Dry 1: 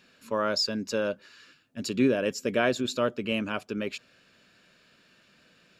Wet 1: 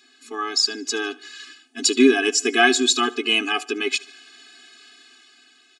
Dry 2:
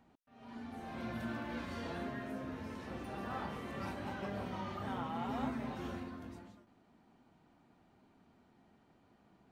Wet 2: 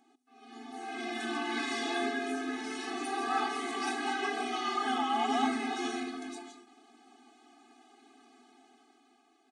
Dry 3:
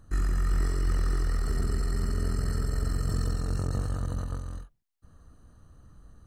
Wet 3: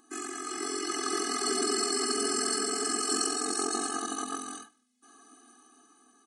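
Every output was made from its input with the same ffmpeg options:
ffmpeg -i in.wav -filter_complex "[0:a]acrossover=split=150|760[link_01][link_02][link_03];[link_01]asoftclip=type=hard:threshold=-29.5dB[link_04];[link_04][link_02][link_03]amix=inputs=3:normalize=0,aeval=exprs='val(0)+0.000501*(sin(2*PI*50*n/s)+sin(2*PI*2*50*n/s)/2+sin(2*PI*3*50*n/s)/3+sin(2*PI*4*50*n/s)/4+sin(2*PI*5*50*n/s)/5)':channel_layout=same,asubboost=boost=10:cutoff=90,bandreject=frequency=5000:width=14,dynaudnorm=framelen=230:gausssize=9:maxgain=9dB,aecho=1:1:74|148|222:0.0841|0.0395|0.0186,aresample=22050,aresample=44100,highshelf=frequency=2900:gain=10.5,afftfilt=real='re*eq(mod(floor(b*sr/1024/220),2),1)':imag='im*eq(mod(floor(b*sr/1024/220),2),1)':win_size=1024:overlap=0.75,volume=4dB" out.wav

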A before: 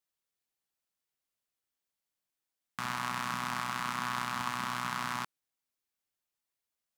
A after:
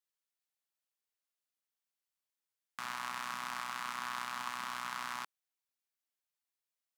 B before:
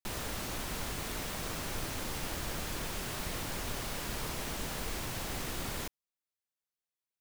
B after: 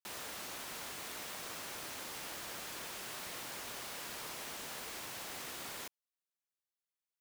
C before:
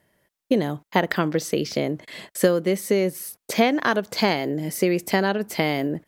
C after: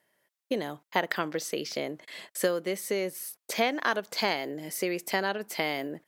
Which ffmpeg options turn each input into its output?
ffmpeg -i in.wav -af "highpass=frequency=600:poles=1,volume=-4dB" out.wav

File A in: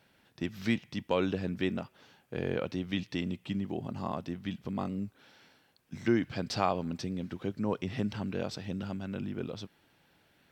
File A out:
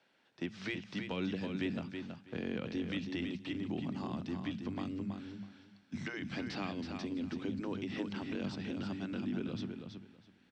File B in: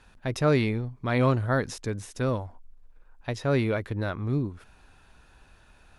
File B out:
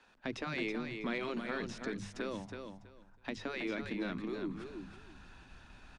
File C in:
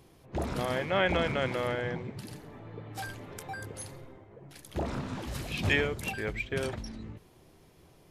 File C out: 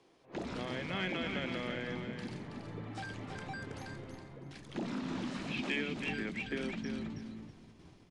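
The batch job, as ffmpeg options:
ffmpeg -i in.wav -filter_complex "[0:a]asubboost=boost=9:cutoff=160,bandreject=frequency=50:width_type=h:width=6,bandreject=frequency=100:width_type=h:width=6,bandreject=frequency=150:width_type=h:width=6,bandreject=frequency=200:width_type=h:width=6,afftfilt=real='re*lt(hypot(re,im),0.316)':imag='im*lt(hypot(re,im),0.316)':win_size=1024:overlap=0.75,acrossover=split=2900[link_01][link_02];[link_02]acompressor=threshold=-50dB:ratio=4:attack=1:release=60[link_03];[link_01][link_03]amix=inputs=2:normalize=0,acrossover=split=200 7200:gain=0.112 1 0.2[link_04][link_05][link_06];[link_04][link_05][link_06]amix=inputs=3:normalize=0,agate=range=-6dB:threshold=-58dB:ratio=16:detection=peak,acrossover=split=320|2300[link_07][link_08][link_09];[link_08]acompressor=threshold=-45dB:ratio=6[link_10];[link_07][link_10][link_09]amix=inputs=3:normalize=0,asoftclip=type=tanh:threshold=-24.5dB,asplit=2[link_11][link_12];[link_12]aecho=0:1:325|650|975:0.473|0.0899|0.0171[link_13];[link_11][link_13]amix=inputs=2:normalize=0,aresample=22050,aresample=44100,volume=1.5dB" out.wav

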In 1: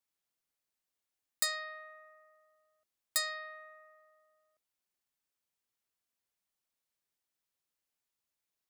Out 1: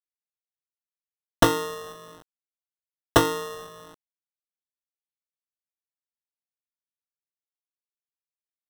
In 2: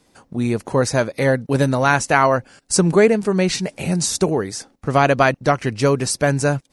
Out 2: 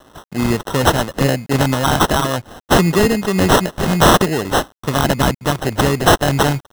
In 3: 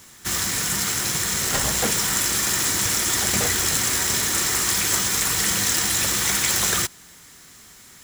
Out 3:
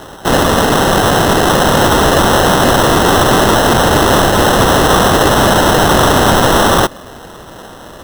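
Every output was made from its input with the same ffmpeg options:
ffmpeg -i in.wav -filter_complex "[0:a]tiltshelf=frequency=880:gain=-7,acrossover=split=350|2300[link_01][link_02][link_03];[link_02]acompressor=threshold=-31dB:ratio=6[link_04];[link_01][link_04][link_03]amix=inputs=3:normalize=0,acrusher=samples=19:mix=1:aa=0.000001,aeval=exprs='0.251*(abs(mod(val(0)/0.251+3,4)-2)-1)':channel_layout=same,acrusher=bits=8:mix=0:aa=0.000001,volume=8.5dB" out.wav

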